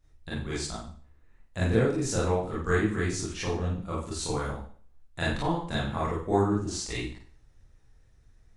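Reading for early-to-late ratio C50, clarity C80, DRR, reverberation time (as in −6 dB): 1.5 dB, 5.5 dB, −8.5 dB, 0.45 s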